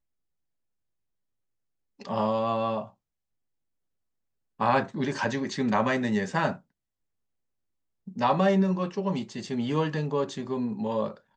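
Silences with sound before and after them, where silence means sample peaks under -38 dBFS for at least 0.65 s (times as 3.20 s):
2.87–4.60 s
6.56–8.08 s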